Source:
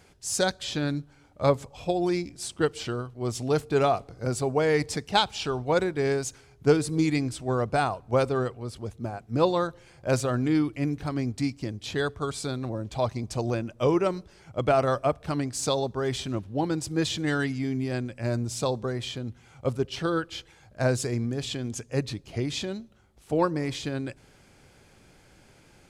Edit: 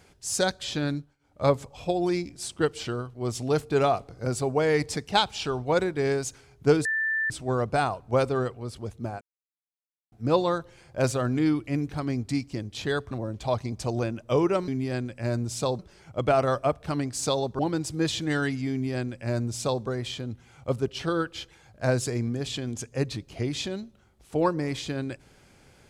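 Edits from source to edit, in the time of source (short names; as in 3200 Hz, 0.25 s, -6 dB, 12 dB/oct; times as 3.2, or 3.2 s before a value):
0.93–1.43 dip -21 dB, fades 0.24 s
6.85–7.3 bleep 1770 Hz -23.5 dBFS
9.21 insert silence 0.91 s
12.2–12.62 cut
15.99–16.56 cut
17.68–18.79 copy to 14.19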